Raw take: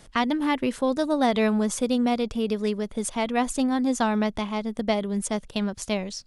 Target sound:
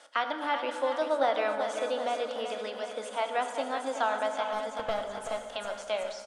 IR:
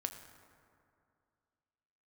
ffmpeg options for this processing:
-filter_complex "[0:a]highpass=frequency=380:width=0.5412,highpass=frequency=380:width=1.3066,equalizer=frequency=400:width_type=q:width=4:gain=-10,equalizer=frequency=570:width_type=q:width=4:gain=8,equalizer=frequency=840:width_type=q:width=4:gain=4,equalizer=frequency=1400:width_type=q:width=4:gain=9,equalizer=frequency=3200:width_type=q:width=4:gain=5,lowpass=frequency=9600:width=0.5412,lowpass=frequency=9600:width=1.3066,asplit=2[link_01][link_02];[link_02]acompressor=threshold=-31dB:ratio=6,volume=-1.5dB[link_03];[link_01][link_03]amix=inputs=2:normalize=0,asettb=1/sr,asplit=3[link_04][link_05][link_06];[link_04]atrim=end=4.444[link_07];[link_05]atrim=start=4.44:end=5.37,asetpts=PTS-STARTPTS,afade=type=in:duration=0.004:curve=qsin,afade=type=out:start_time=0.926:duration=0.004:curve=qsin,aeval=exprs='clip(val(0),-1,0.0631)':channel_layout=same[link_08];[link_06]atrim=start=5.366[link_09];[link_07][link_08]acrossfade=duration=0.004:curve1=hsin:curve2=qsin[link_10];[link_10][link_09]acrossfade=duration=0.004:curve1=qsin:curve2=hsin,aecho=1:1:380|760|1140|1520|1900|2280|2660:0.355|0.199|0.111|0.0623|0.0349|0.0195|0.0109[link_11];[1:a]atrim=start_sample=2205[link_12];[link_11][link_12]afir=irnorm=-1:irlink=0,acrossover=split=3400[link_13][link_14];[link_14]acompressor=threshold=-39dB:ratio=4:attack=1:release=60[link_15];[link_13][link_15]amix=inputs=2:normalize=0,volume=-7dB" -ar 32000 -c:a libmp3lame -b:a 96k

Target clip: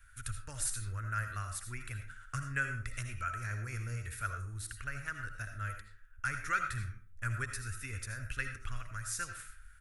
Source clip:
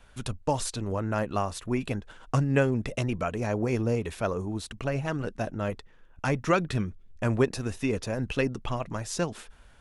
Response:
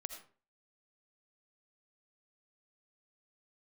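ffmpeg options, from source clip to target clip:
-filter_complex "[0:a]firequalizer=gain_entry='entry(100,0);entry(170,-22);entry(860,-25);entry(1400,5);entry(3000,-10);entry(10000,7)':delay=0.05:min_phase=1[link_01];[1:a]atrim=start_sample=2205,afade=type=out:start_time=0.4:duration=0.01,atrim=end_sample=18081[link_02];[link_01][link_02]afir=irnorm=-1:irlink=0"

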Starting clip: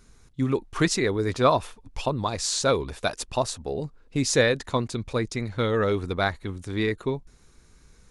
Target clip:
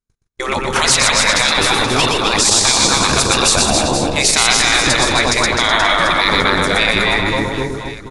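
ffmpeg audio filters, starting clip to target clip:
ffmpeg -i in.wav -filter_complex "[0:a]asplit=2[link_01][link_02];[link_02]adelay=255,lowpass=frequency=4200:poles=1,volume=-6dB,asplit=2[link_03][link_04];[link_04]adelay=255,lowpass=frequency=4200:poles=1,volume=0.29,asplit=2[link_05][link_06];[link_06]adelay=255,lowpass=frequency=4200:poles=1,volume=0.29,asplit=2[link_07][link_08];[link_08]adelay=255,lowpass=frequency=4200:poles=1,volume=0.29[link_09];[link_03][link_05][link_07][link_09]amix=inputs=4:normalize=0[link_10];[link_01][link_10]amix=inputs=2:normalize=0,afftfilt=real='re*lt(hypot(re,im),0.1)':imag='im*lt(hypot(re,im),0.1)':win_size=1024:overlap=0.75,agate=range=-55dB:threshold=-46dB:ratio=16:detection=peak,asplit=2[link_11][link_12];[link_12]aecho=0:1:120|276|478.8|742.4|1085:0.631|0.398|0.251|0.158|0.1[link_13];[link_11][link_13]amix=inputs=2:normalize=0,alimiter=level_in=22.5dB:limit=-1dB:release=50:level=0:latency=1,volume=-1dB" out.wav

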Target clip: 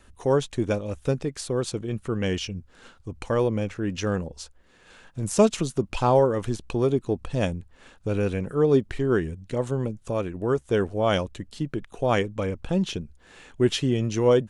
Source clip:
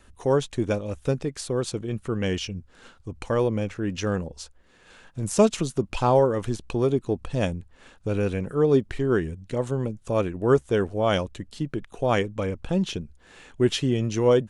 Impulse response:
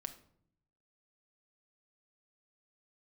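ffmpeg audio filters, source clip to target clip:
-filter_complex "[0:a]asettb=1/sr,asplit=3[link_01][link_02][link_03];[link_01]atrim=end=10.074[link_04];[link_02]atrim=start=10.07:end=10.69,asetpts=PTS-STARTPTS,afade=type=in:duration=0.004:curve=qsin,afade=type=out:start_time=0.616:duration=0.004:curve=qsin,acompressor=threshold=-28dB:ratio=1.5[link_05];[link_03]atrim=start=10.686[link_06];[link_04][link_05]acrossfade=duration=0.004:curve1=hsin:curve2=qsin[link_07];[link_07][link_06]acrossfade=duration=0.004:curve1=qsin:curve2=hsin"

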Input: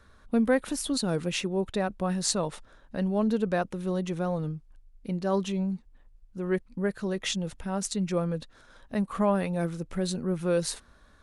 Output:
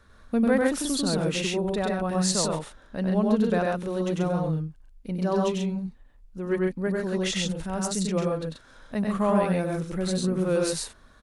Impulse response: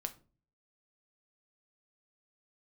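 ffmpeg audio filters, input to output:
-af "aecho=1:1:96.21|134.1:0.794|0.708"

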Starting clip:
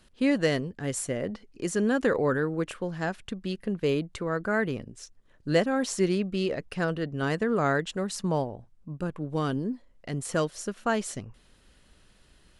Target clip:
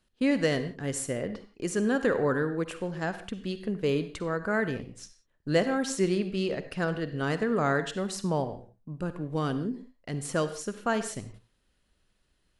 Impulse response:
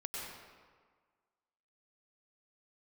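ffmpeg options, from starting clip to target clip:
-filter_complex "[0:a]agate=range=-12dB:threshold=-49dB:ratio=16:detection=peak,asplit=2[link_01][link_02];[1:a]atrim=start_sample=2205,afade=type=out:start_time=0.42:duration=0.01,atrim=end_sample=18963,asetrate=88200,aresample=44100[link_03];[link_02][link_03]afir=irnorm=-1:irlink=0,volume=-2dB[link_04];[link_01][link_04]amix=inputs=2:normalize=0,volume=-3dB"

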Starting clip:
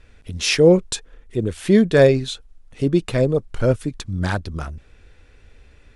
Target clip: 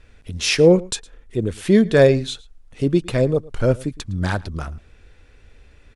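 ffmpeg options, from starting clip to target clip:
ffmpeg -i in.wav -filter_complex "[0:a]asplit=2[link_01][link_02];[link_02]adelay=110.8,volume=-22dB,highshelf=frequency=4000:gain=-2.49[link_03];[link_01][link_03]amix=inputs=2:normalize=0" out.wav

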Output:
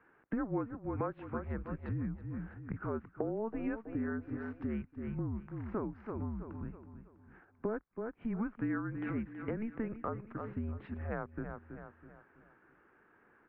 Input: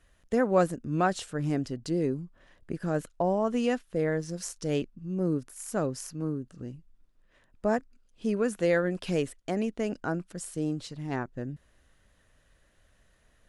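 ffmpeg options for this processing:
ffmpeg -i in.wav -af "highpass=frequency=360:width_type=q:width=0.5412,highpass=frequency=360:width_type=q:width=1.307,lowpass=frequency=2200:width_type=q:width=0.5176,lowpass=frequency=2200:width_type=q:width=0.7071,lowpass=frequency=2200:width_type=q:width=1.932,afreqshift=-220,aecho=1:1:325|650|975|1300:0.224|0.0851|0.0323|0.0123,acompressor=threshold=-41dB:ratio=4,volume=5.5dB" out.wav

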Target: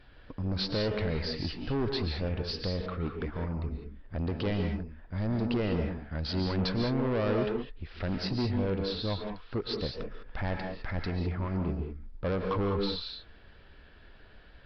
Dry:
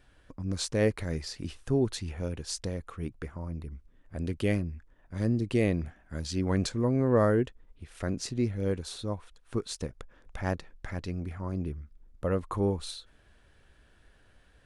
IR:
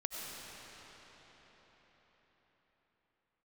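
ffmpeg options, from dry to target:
-filter_complex "[0:a]alimiter=limit=-20.5dB:level=0:latency=1,aresample=11025,asoftclip=type=tanh:threshold=-31.5dB,aresample=44100[link_01];[1:a]atrim=start_sample=2205,atrim=end_sample=6615,asetrate=29988,aresample=44100[link_02];[link_01][link_02]afir=irnorm=-1:irlink=0,volume=6dB"

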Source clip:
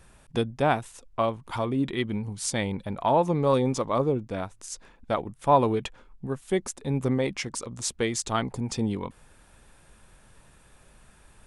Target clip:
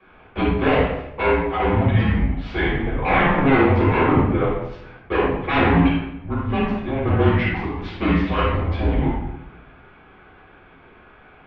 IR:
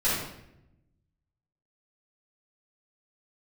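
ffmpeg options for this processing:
-filter_complex "[0:a]aeval=exprs='0.075*(abs(mod(val(0)/0.075+3,4)-2)-1)':channel_layout=same[link_01];[1:a]atrim=start_sample=2205,asetrate=41013,aresample=44100[link_02];[link_01][link_02]afir=irnorm=-1:irlink=0,highpass=frequency=220:width_type=q:width=0.5412,highpass=frequency=220:width_type=q:width=1.307,lowpass=frequency=3100:width_type=q:width=0.5176,lowpass=frequency=3100:width_type=q:width=0.7071,lowpass=frequency=3100:width_type=q:width=1.932,afreqshift=-160"

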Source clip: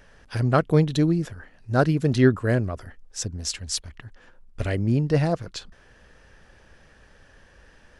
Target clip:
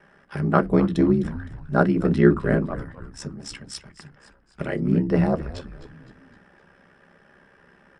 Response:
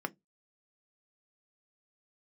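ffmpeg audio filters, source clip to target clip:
-filter_complex "[0:a]aeval=exprs='val(0)*sin(2*PI*33*n/s)':channel_layout=same[link_01];[1:a]atrim=start_sample=2205[link_02];[link_01][link_02]afir=irnorm=-1:irlink=0,aresample=22050,aresample=44100,asplit=5[link_03][link_04][link_05][link_06][link_07];[link_04]adelay=257,afreqshift=-110,volume=-14.5dB[link_08];[link_05]adelay=514,afreqshift=-220,volume=-21.1dB[link_09];[link_06]adelay=771,afreqshift=-330,volume=-27.6dB[link_10];[link_07]adelay=1028,afreqshift=-440,volume=-34.2dB[link_11];[link_03][link_08][link_09][link_10][link_11]amix=inputs=5:normalize=0"

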